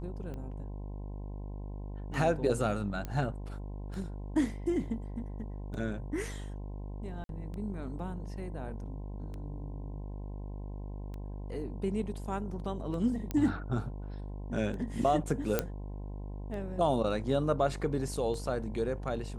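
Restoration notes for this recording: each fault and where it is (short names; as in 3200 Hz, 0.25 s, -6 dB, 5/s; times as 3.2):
buzz 50 Hz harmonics 21 -40 dBFS
tick 33 1/3 rpm -31 dBFS
3.05 pop -23 dBFS
7.24–7.29 gap 52 ms
13.31 pop -20 dBFS
15.59 pop -12 dBFS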